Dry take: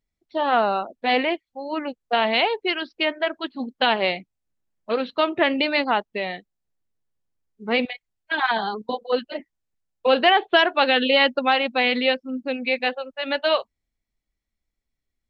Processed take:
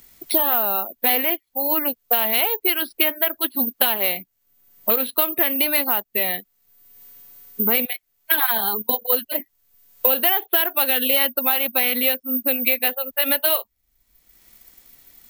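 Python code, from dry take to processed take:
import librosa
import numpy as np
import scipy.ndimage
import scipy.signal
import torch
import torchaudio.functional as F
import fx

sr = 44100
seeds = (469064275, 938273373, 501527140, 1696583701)

p1 = fx.high_shelf(x, sr, hz=3300.0, db=7.5)
p2 = np.clip(p1, -10.0 ** (-14.0 / 20.0), 10.0 ** (-14.0 / 20.0))
p3 = p1 + (p2 * librosa.db_to_amplitude(-8.0))
p4 = (np.kron(p3[::3], np.eye(3)[0]) * 3)[:len(p3)]
p5 = fx.band_squash(p4, sr, depth_pct=100)
y = p5 * librosa.db_to_amplitude(-7.5)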